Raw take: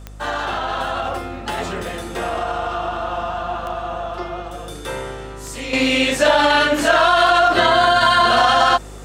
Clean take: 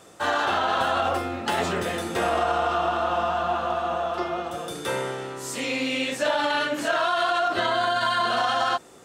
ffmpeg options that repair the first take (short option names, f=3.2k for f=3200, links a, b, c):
-af "adeclick=t=4,bandreject=f=50.9:t=h:w=4,bandreject=f=101.8:t=h:w=4,bandreject=f=152.7:t=h:w=4,bandreject=f=203.6:t=h:w=4,bandreject=f=254.5:t=h:w=4,asetnsamples=n=441:p=0,asendcmd='5.73 volume volume -9.5dB',volume=0dB"